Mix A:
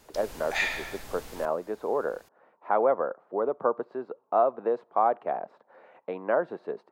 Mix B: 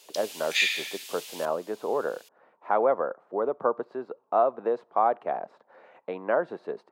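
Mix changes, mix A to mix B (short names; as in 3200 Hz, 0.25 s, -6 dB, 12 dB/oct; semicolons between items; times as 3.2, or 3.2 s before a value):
background: add resonant high-pass 2900 Hz, resonance Q 2.2; master: add bell 9700 Hz +6.5 dB 2.7 oct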